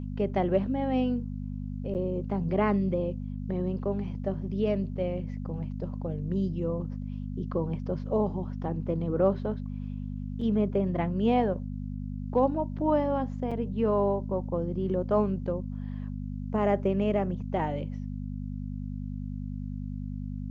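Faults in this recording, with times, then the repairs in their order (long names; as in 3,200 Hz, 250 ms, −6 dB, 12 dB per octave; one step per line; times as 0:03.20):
mains hum 50 Hz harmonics 5 −35 dBFS
0:01.94–0:01.95: drop-out 9 ms
0:10.41: drop-out 4.2 ms
0:13.51–0:13.52: drop-out 5.6 ms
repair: hum removal 50 Hz, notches 5
repair the gap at 0:01.94, 9 ms
repair the gap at 0:10.41, 4.2 ms
repair the gap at 0:13.51, 5.6 ms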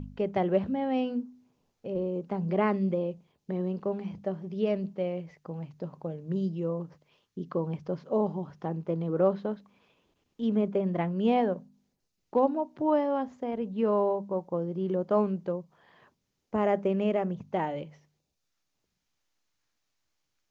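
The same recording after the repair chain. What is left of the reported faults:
none of them is left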